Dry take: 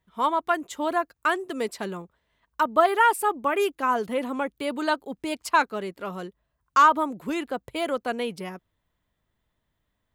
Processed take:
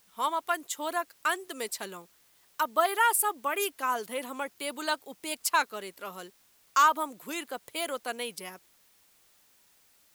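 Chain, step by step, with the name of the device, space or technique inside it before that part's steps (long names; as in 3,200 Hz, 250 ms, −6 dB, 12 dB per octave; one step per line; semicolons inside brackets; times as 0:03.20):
turntable without a phono preamp (RIAA equalisation recording; white noise bed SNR 32 dB)
level −5.5 dB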